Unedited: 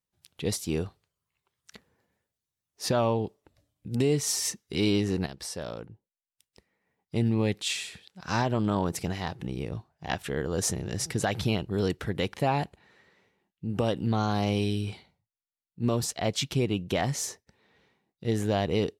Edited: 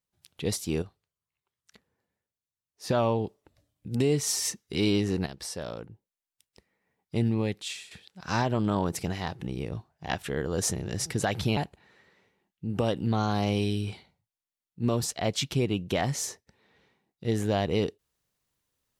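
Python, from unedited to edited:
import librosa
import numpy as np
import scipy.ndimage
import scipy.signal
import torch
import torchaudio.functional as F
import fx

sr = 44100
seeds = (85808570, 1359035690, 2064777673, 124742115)

y = fx.edit(x, sr, fx.clip_gain(start_s=0.82, length_s=2.07, db=-8.0),
    fx.fade_out_to(start_s=7.22, length_s=0.69, floor_db=-11.5),
    fx.cut(start_s=11.57, length_s=1.0), tone=tone)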